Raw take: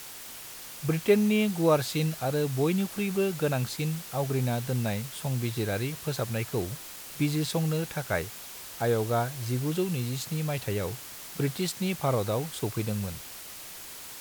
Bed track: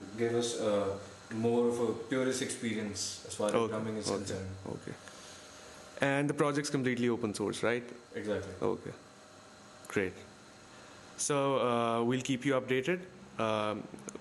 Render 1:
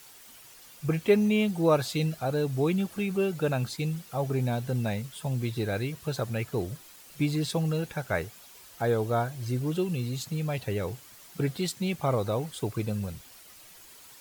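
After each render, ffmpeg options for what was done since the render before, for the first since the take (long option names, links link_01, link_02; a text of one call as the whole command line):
ffmpeg -i in.wav -af "afftdn=noise_reduction=10:noise_floor=-43" out.wav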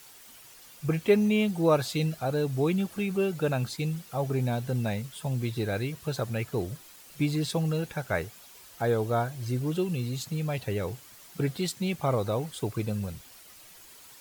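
ffmpeg -i in.wav -af anull out.wav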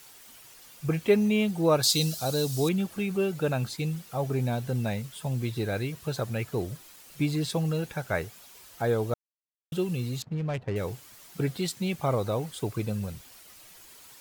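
ffmpeg -i in.wav -filter_complex "[0:a]asettb=1/sr,asplit=3[link_01][link_02][link_03];[link_01]atrim=end=1.834[link_04];[link_02]atrim=start=1.83:end=2.69,asetpts=PTS-STARTPTS,afade=type=in:duration=0.004:curve=qsin,afade=type=out:start_time=0.856:duration=0.004:curve=qsin,highshelf=frequency=3200:width_type=q:width=1.5:gain=12[link_05];[link_03]atrim=start=2.686[link_06];[link_04][link_05]acrossfade=duration=0.004:curve1=hsin:curve2=qsin[link_07];[link_07][link_06]acrossfade=duration=0.004:curve1=qsin:curve2=hsin,asettb=1/sr,asplit=3[link_08][link_09][link_10];[link_08]atrim=end=10.224[link_11];[link_09]atrim=start=10.22:end=10.76,asetpts=PTS-STARTPTS,afade=type=in:duration=0.004:curve=qsin,afade=type=out:start_time=0.536:duration=0.004:curve=qsin,adynamicsmooth=sensitivity=6:basefreq=680[link_12];[link_10]atrim=start=10.756[link_13];[link_11][link_12]acrossfade=duration=0.004:curve1=hsin:curve2=qsin[link_14];[link_14][link_13]acrossfade=duration=0.004:curve1=qsin:curve2=hsin,asplit=3[link_15][link_16][link_17];[link_15]atrim=end=9.14,asetpts=PTS-STARTPTS,afade=type=out:start_time=9.136:duration=0.004:curve=hsin[link_18];[link_16]atrim=start=9.14:end=9.72,asetpts=PTS-STARTPTS,volume=0[link_19];[link_17]atrim=start=9.72,asetpts=PTS-STARTPTS,afade=type=in:duration=0.004:curve=hsin[link_20];[link_18][link_19][link_20]concat=n=3:v=0:a=1" out.wav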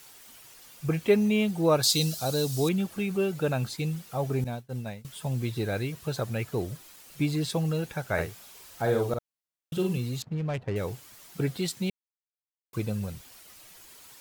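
ffmpeg -i in.wav -filter_complex "[0:a]asettb=1/sr,asplit=3[link_01][link_02][link_03];[link_01]atrim=end=4.444[link_04];[link_02]atrim=start=4.44:end=5.05,asetpts=PTS-STARTPTS,afade=type=in:duration=0.004:curve=qsin,afade=type=out:start_time=0.606:duration=0.004:curve=qsin,agate=range=-33dB:threshold=-23dB:ratio=3:release=100:detection=peak[link_05];[link_03]atrim=start=5.046[link_06];[link_04][link_05]acrossfade=duration=0.004:curve1=hsin:curve2=qsin[link_07];[link_07][link_06]acrossfade=duration=0.004:curve1=qsin:curve2=hsin,asettb=1/sr,asplit=3[link_08][link_09][link_10];[link_08]atrim=end=8.134[link_11];[link_09]atrim=start=8.13:end=9.98,asetpts=PTS-STARTPTS,afade=type=in:duration=0.004:curve=qsin,afade=type=out:start_time=1.846:duration=0.004:curve=qsin,asplit=2[link_12][link_13];[link_13]adelay=48,volume=-4.5dB[link_14];[link_12][link_14]amix=inputs=2:normalize=0,atrim=end_sample=81585[link_15];[link_10]atrim=start=9.976[link_16];[link_11][link_15]acrossfade=duration=0.004:curve1=hsin:curve2=qsin[link_17];[link_17][link_16]acrossfade=duration=0.004:curve1=qsin:curve2=hsin,asplit=3[link_18][link_19][link_20];[link_18]atrim=end=11.9,asetpts=PTS-STARTPTS,afade=type=out:start_time=11.896:duration=0.004:curve=hsin[link_21];[link_19]atrim=start=11.9:end=12.73,asetpts=PTS-STARTPTS,volume=0[link_22];[link_20]atrim=start=12.73,asetpts=PTS-STARTPTS,afade=type=in:duration=0.004:curve=hsin[link_23];[link_21][link_22][link_23]concat=n=3:v=0:a=1" out.wav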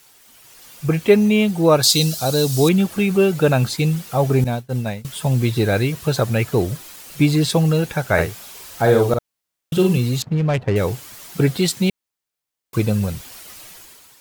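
ffmpeg -i in.wav -af "dynaudnorm=framelen=100:gausssize=11:maxgain=12dB" out.wav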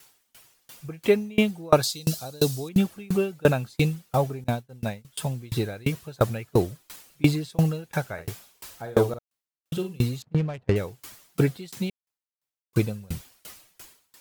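ffmpeg -i in.wav -af "aeval=exprs='val(0)*pow(10,-30*if(lt(mod(2.9*n/s,1),2*abs(2.9)/1000),1-mod(2.9*n/s,1)/(2*abs(2.9)/1000),(mod(2.9*n/s,1)-2*abs(2.9)/1000)/(1-2*abs(2.9)/1000))/20)':channel_layout=same" out.wav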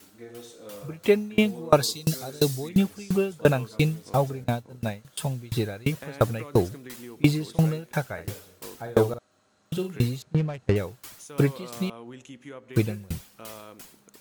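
ffmpeg -i in.wav -i bed.wav -filter_complex "[1:a]volume=-12dB[link_01];[0:a][link_01]amix=inputs=2:normalize=0" out.wav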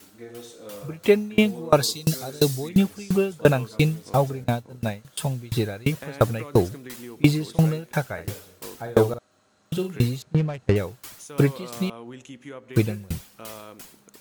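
ffmpeg -i in.wav -af "volume=2.5dB,alimiter=limit=-3dB:level=0:latency=1" out.wav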